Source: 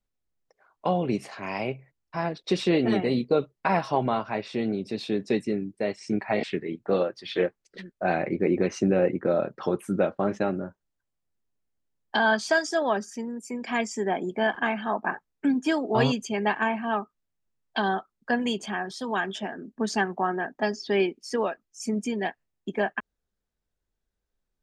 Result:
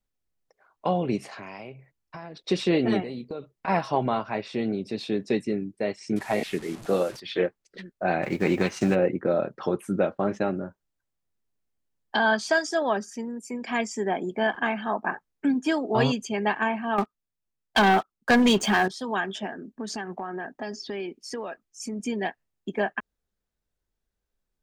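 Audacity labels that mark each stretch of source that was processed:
1.240000	2.370000	compression 10:1, threshold -35 dBFS
3.020000	3.680000	compression 4:1, threshold -33 dBFS
6.160000	7.200000	one-bit delta coder 64 kbps, step -37 dBFS
8.220000	8.940000	formants flattened exponent 0.6
16.980000	18.880000	waveshaping leveller passes 3
19.620000	22.000000	compression, threshold -29 dBFS

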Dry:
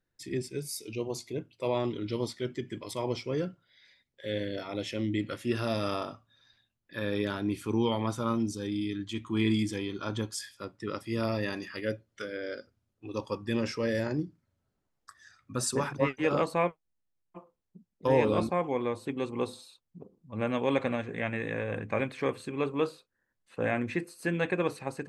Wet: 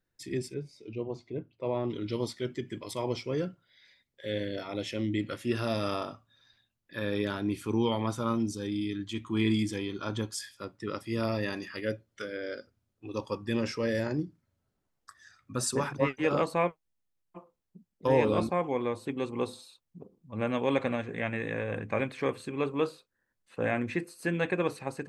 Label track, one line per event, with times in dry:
0.540000	1.900000	tape spacing loss at 10 kHz 33 dB

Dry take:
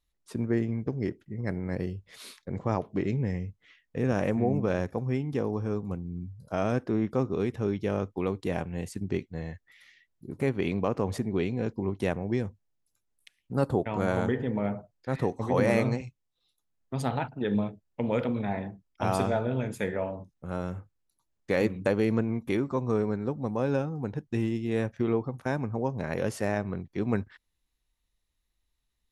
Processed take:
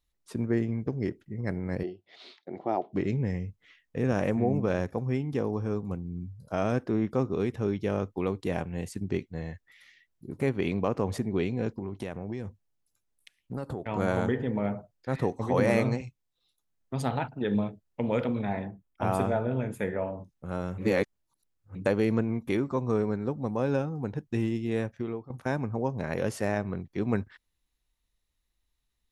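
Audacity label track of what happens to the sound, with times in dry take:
1.830000	2.930000	cabinet simulation 330–4200 Hz, peaks and dips at 350 Hz +8 dB, 490 Hz -7 dB, 720 Hz +9 dB, 1.1 kHz -8 dB, 1.6 kHz -7 dB, 2.5 kHz -4 dB
11.700000	13.880000	compression, threshold -30 dBFS
18.650000	20.180000	peaking EQ 5 kHz -11.5 dB 1.2 oct
20.780000	21.750000	reverse
24.680000	25.300000	fade out, to -16 dB

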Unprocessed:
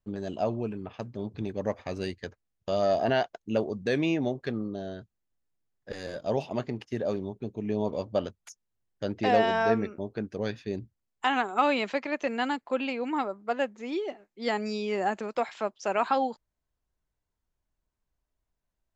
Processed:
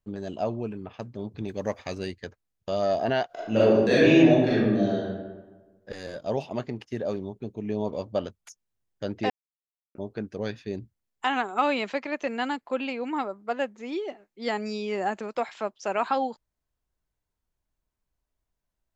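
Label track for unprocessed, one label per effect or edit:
1.480000	1.950000	treble shelf 2.5 kHz +9.5 dB
3.260000	4.970000	reverb throw, RT60 1.3 s, DRR -9.5 dB
9.300000	9.950000	mute

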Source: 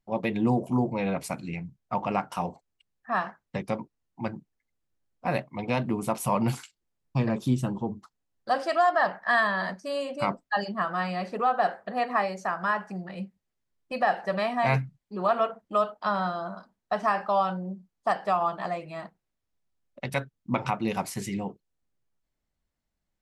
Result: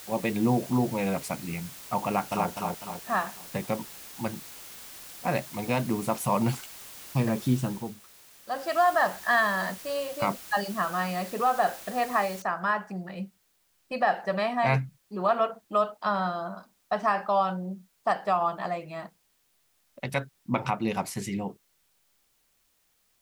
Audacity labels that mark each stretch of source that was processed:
2.060000	2.490000	echo throw 250 ms, feedback 45%, level -2 dB
7.610000	8.820000	dip -9 dB, fades 0.35 s
9.780000	10.220000	elliptic high-pass 300 Hz
12.420000	12.420000	noise floor step -45 dB -70 dB

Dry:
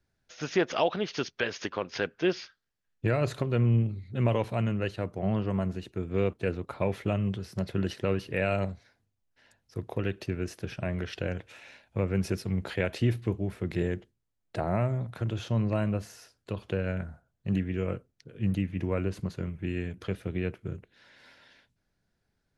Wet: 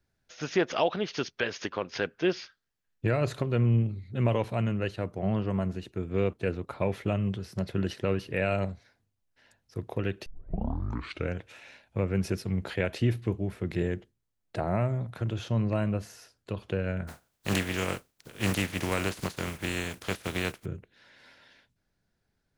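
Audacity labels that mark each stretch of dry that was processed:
10.260000	10.260000	tape start 1.07 s
17.070000	20.640000	spectral contrast reduction exponent 0.44

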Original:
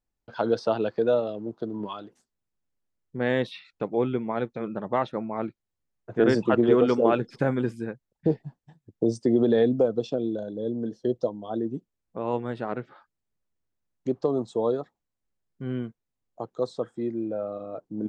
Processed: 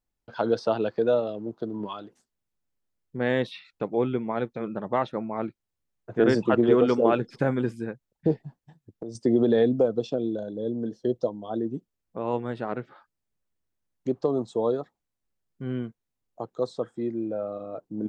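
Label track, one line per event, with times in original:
8.410000	9.150000	compression 5:1, threshold -33 dBFS

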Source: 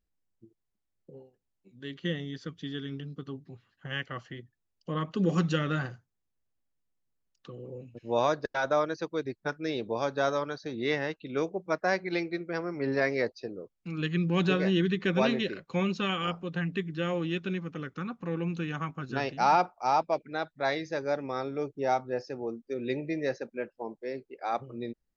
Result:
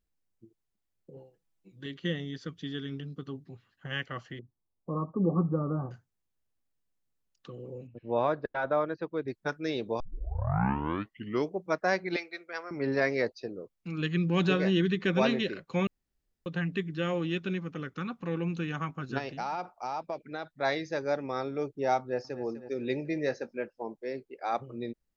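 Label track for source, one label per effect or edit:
1.160000	1.860000	comb 6.1 ms, depth 83%
4.390000	5.910000	Chebyshev low-pass 1.2 kHz, order 6
7.870000	9.280000	distance through air 410 m
10.000000	10.000000	tape start 1.56 s
12.160000	12.710000	high-pass 790 Hz
15.870000	16.460000	room tone
17.870000	18.380000	dynamic bell 3.5 kHz, up to +5 dB, over -60 dBFS, Q 1.1
19.180000	20.570000	compression 5:1, threshold -31 dBFS
21.990000	22.430000	echo throw 250 ms, feedback 55%, level -12.5 dB
23.140000	23.560000	doubling 20 ms -12 dB

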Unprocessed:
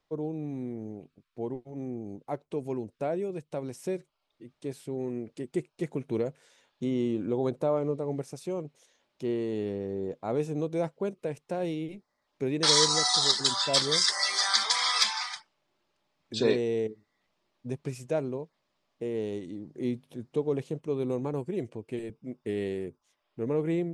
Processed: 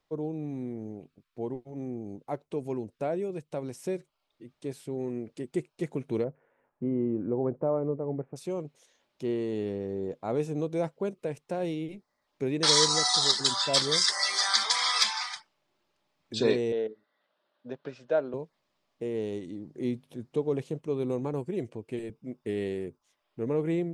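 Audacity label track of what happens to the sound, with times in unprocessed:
6.240000	8.360000	Gaussian low-pass sigma 5.5 samples
16.720000	18.340000	cabinet simulation 290–4200 Hz, peaks and dips at 360 Hz -4 dB, 570 Hz +7 dB, 1.5 kHz +9 dB, 2.3 kHz -7 dB, 3.6 kHz +3 dB

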